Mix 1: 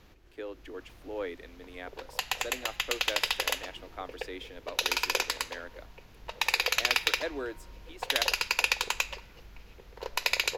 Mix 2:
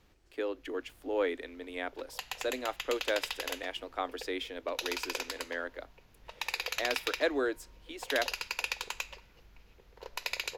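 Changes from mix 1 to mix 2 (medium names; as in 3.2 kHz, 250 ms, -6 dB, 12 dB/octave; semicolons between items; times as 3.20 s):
speech +5.5 dB; background -8.0 dB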